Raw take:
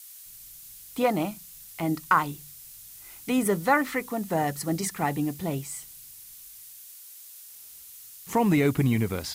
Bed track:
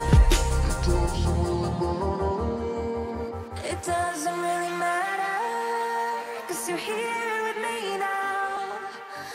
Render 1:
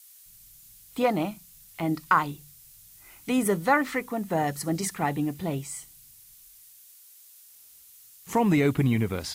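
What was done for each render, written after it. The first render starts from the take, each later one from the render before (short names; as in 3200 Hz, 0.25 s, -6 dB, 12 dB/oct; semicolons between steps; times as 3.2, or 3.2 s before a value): noise print and reduce 6 dB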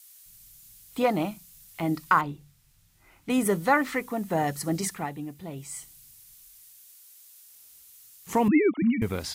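2.21–3.3 LPF 1600 Hz 6 dB/oct; 4.88–5.77 dip -8.5 dB, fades 0.22 s; 8.48–9.02 sine-wave speech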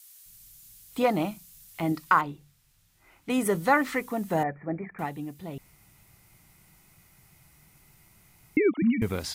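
1.92–3.55 tone controls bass -4 dB, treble -2 dB; 4.43–4.99 rippled Chebyshev low-pass 2400 Hz, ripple 6 dB; 5.58–8.57 room tone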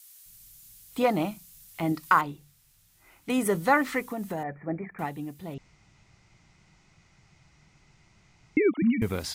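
2.03–3.31 high shelf 4900 Hz +6 dB; 4.04–4.63 compressor, threshold -28 dBFS; 5.54–8.62 steep low-pass 6800 Hz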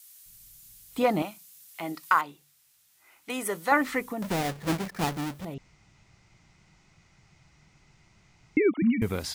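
1.22–3.72 HPF 730 Hz 6 dB/oct; 4.22–5.45 half-waves squared off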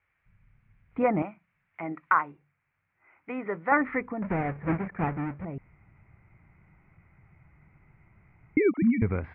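Chebyshev low-pass 2300 Hz, order 5; bell 84 Hz +5.5 dB 1.4 oct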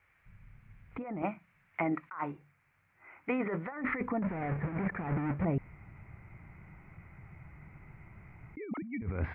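negative-ratio compressor -35 dBFS, ratio -1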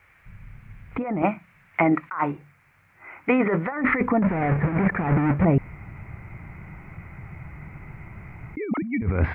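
gain +12 dB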